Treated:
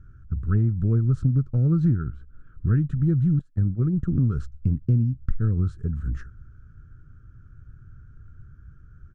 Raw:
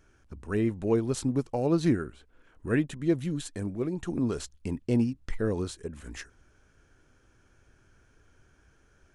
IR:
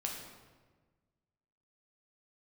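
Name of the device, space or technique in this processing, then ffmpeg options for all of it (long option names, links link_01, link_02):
jukebox: -filter_complex "[0:a]lowpass=7300,firequalizer=gain_entry='entry(310,0);entry(820,-26);entry(1300,4);entry(2100,-19)':delay=0.05:min_phase=1,lowshelf=frequency=200:width_type=q:width=1.5:gain=13,acompressor=threshold=-21dB:ratio=6,asettb=1/sr,asplit=3[link_01][link_02][link_03];[link_01]atrim=end=3.394[link_04];[link_02]atrim=start=3.39:end=4.08,asetpts=PTS-STARTPTS,afade=type=in:duration=0.004:curve=qsin,afade=type=out:start_time=0.686:duration=0.004:curve=qsin,agate=range=-21dB:threshold=-27dB:ratio=16:detection=peak[link_05];[link_03]atrim=start=4.076[link_06];[link_04][link_05]acrossfade=duration=0.004:curve1=hsin:curve2=qsin[link_07];[link_07][link_06]acrossfade=duration=0.004:curve1=qsin:curve2=hsin,volume=3.5dB"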